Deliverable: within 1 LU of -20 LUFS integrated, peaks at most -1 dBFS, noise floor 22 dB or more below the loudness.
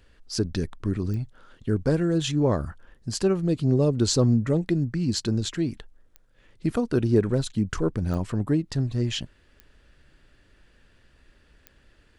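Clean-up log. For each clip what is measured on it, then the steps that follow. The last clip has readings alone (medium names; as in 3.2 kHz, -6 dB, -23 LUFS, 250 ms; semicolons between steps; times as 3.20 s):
clicks found 5; loudness -25.5 LUFS; peak level -9.0 dBFS; loudness target -20.0 LUFS
-> de-click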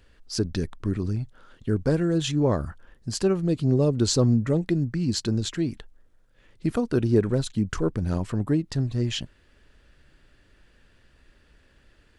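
clicks found 0; loudness -25.5 LUFS; peak level -9.0 dBFS; loudness target -20.0 LUFS
-> trim +5.5 dB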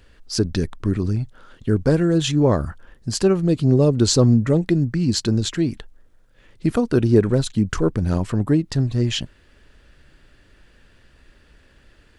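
loudness -20.0 LUFS; peak level -3.5 dBFS; noise floor -55 dBFS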